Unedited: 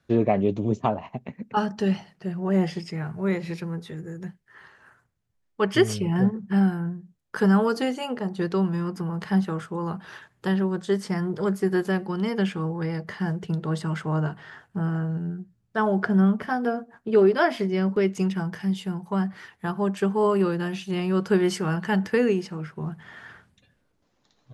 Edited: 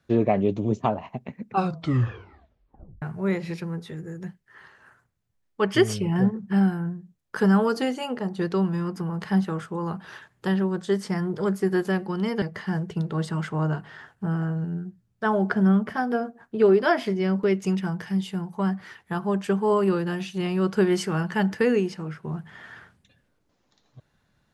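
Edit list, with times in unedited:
0:01.44: tape stop 1.58 s
0:12.42–0:12.95: remove

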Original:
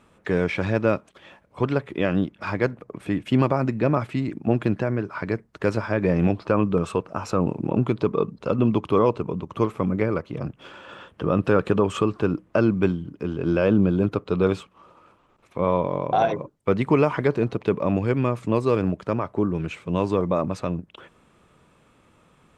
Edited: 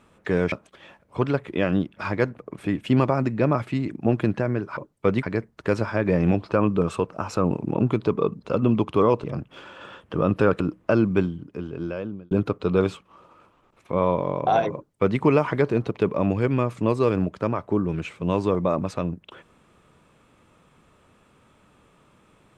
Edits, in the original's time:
0:00.52–0:00.94: remove
0:09.20–0:10.32: remove
0:11.68–0:12.26: remove
0:12.80–0:13.97: fade out
0:16.40–0:16.86: duplicate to 0:05.19

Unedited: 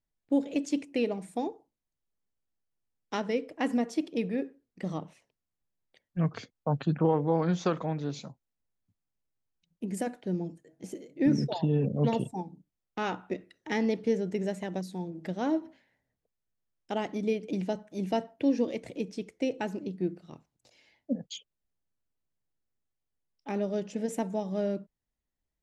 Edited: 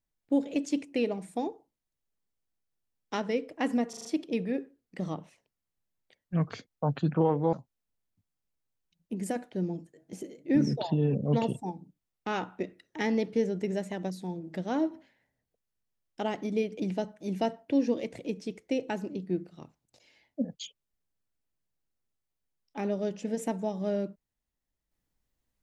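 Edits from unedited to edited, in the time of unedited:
0:03.89: stutter 0.04 s, 5 plays
0:07.37–0:08.24: remove

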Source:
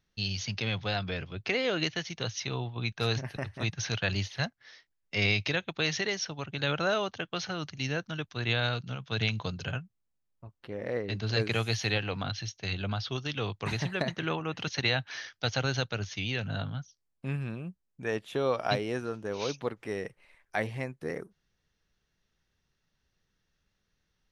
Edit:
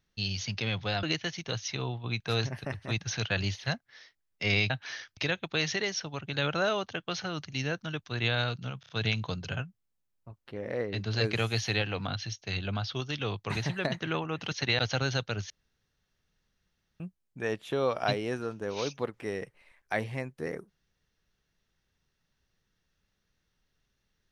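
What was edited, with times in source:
0:01.03–0:01.75: remove
0:09.05: stutter 0.03 s, 4 plays
0:14.95–0:15.42: move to 0:05.42
0:16.13–0:17.63: fill with room tone

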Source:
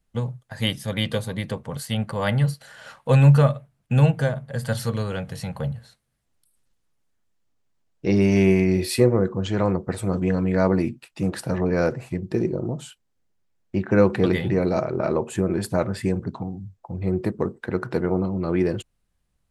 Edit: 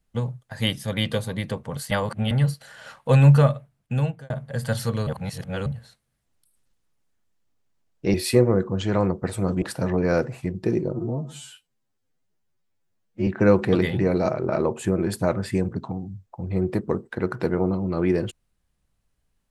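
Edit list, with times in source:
0:01.91–0:02.31: reverse
0:03.39–0:04.30: fade out equal-power
0:05.07–0:05.66: reverse
0:08.14–0:08.79: remove
0:10.27–0:11.30: remove
0:12.61–0:13.78: time-stretch 2×

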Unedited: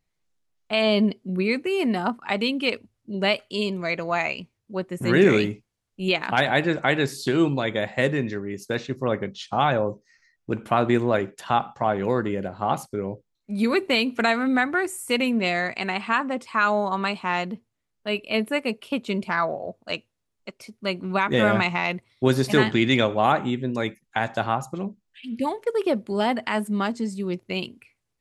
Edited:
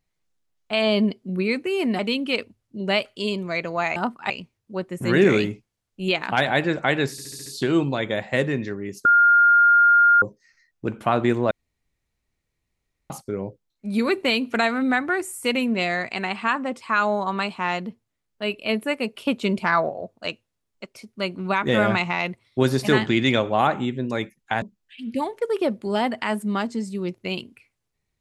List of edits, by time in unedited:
0:01.99–0:02.33: move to 0:04.30
0:07.11: stutter 0.07 s, 6 plays
0:08.70–0:09.87: beep over 1,410 Hz −11.5 dBFS
0:11.16–0:12.75: fill with room tone
0:18.80–0:19.54: clip gain +3.5 dB
0:24.27–0:24.87: remove

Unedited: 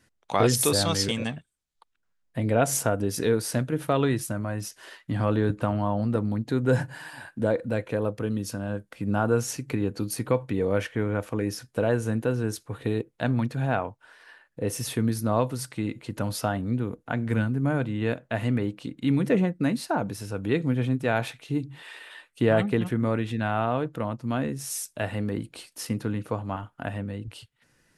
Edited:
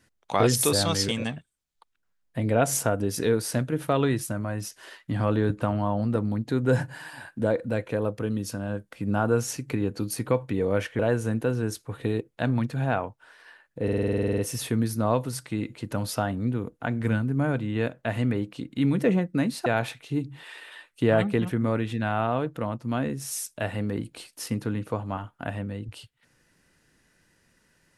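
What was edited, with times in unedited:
0:10.99–0:11.80: remove
0:14.64: stutter 0.05 s, 12 plays
0:19.92–0:21.05: remove

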